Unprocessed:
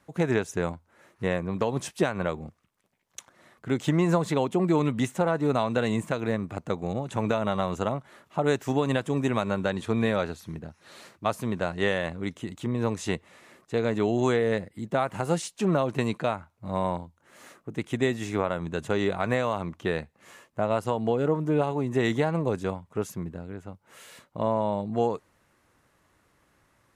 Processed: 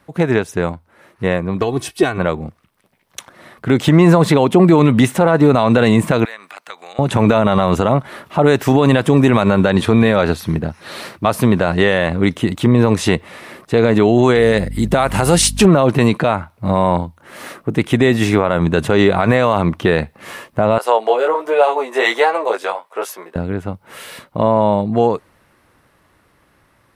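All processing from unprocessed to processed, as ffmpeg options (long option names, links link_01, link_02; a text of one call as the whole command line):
ffmpeg -i in.wav -filter_complex "[0:a]asettb=1/sr,asplit=3[link_01][link_02][link_03];[link_01]atrim=end=1.614[link_04];[link_02]atrim=start=1.61:end=2.18,asetpts=PTS-STARTPTS,afade=type=in:duration=0.004:curve=qsin,afade=type=out:start_time=0.566:duration=0.004:curve=qsin,equalizer=frequency=980:width=0.46:gain=-5,aecho=1:1:2.7:0.77,atrim=end_sample=25137[link_05];[link_03]atrim=start=2.176[link_06];[link_04][link_05]acrossfade=duration=0.004:curve1=hsin:curve2=qsin[link_07];[link_07][link_06]acrossfade=duration=0.004:curve1=qsin:curve2=hsin,asettb=1/sr,asplit=3[link_08][link_09][link_10];[link_08]atrim=end=6.254[link_11];[link_09]atrim=start=6.25:end=6.99,asetpts=PTS-STARTPTS,afade=type=in:duration=0.004:curve=qsin,afade=type=out:start_time=0.736:duration=0.004:curve=qsin,highpass=1500,acompressor=threshold=-54dB:ratio=2:attack=3.2:release=140:knee=1:detection=peak[link_12];[link_10]atrim=start=6.986[link_13];[link_11][link_12]acrossfade=duration=0.004:curve1=hsin:curve2=qsin[link_14];[link_14][link_13]acrossfade=duration=0.004:curve1=qsin:curve2=hsin,asettb=1/sr,asplit=3[link_15][link_16][link_17];[link_15]atrim=end=14.354[link_18];[link_16]atrim=start=14.35:end=15.66,asetpts=PTS-STARTPTS,afade=type=in:duration=0.004:curve=qsin,afade=type=out:start_time=1.306:duration=0.004:curve=qsin,equalizer=frequency=9500:width_type=o:width=2.6:gain=9.5,aeval=exprs='val(0)+0.00794*(sin(2*PI*50*n/s)+sin(2*PI*2*50*n/s)/2+sin(2*PI*3*50*n/s)/3+sin(2*PI*4*50*n/s)/4+sin(2*PI*5*50*n/s)/5)':channel_layout=same[link_19];[link_17]atrim=start=15.656[link_20];[link_18][link_19]acrossfade=duration=0.004:curve1=hsin:curve2=qsin[link_21];[link_21][link_20]acrossfade=duration=0.004:curve1=qsin:curve2=hsin,asettb=1/sr,asplit=3[link_22][link_23][link_24];[link_22]atrim=end=20.784[link_25];[link_23]atrim=start=20.78:end=23.36,asetpts=PTS-STARTPTS,afade=type=in:duration=0.004:curve=qsin,afade=type=out:start_time=2.576:duration=0.004:curve=qsin,highpass=frequency=500:width=0.5412,highpass=frequency=500:width=1.3066,flanger=delay=15:depth=5:speed=1.3[link_26];[link_24]atrim=start=23.356[link_27];[link_25][link_26]acrossfade=duration=0.004:curve1=hsin:curve2=qsin[link_28];[link_28][link_27]acrossfade=duration=0.004:curve1=qsin:curve2=hsin,equalizer=frequency=6900:width=2.6:gain=-8.5,dynaudnorm=framelen=530:gausssize=13:maxgain=11.5dB,alimiter=level_in=10.5dB:limit=-1dB:release=50:level=0:latency=1,volume=-1dB" out.wav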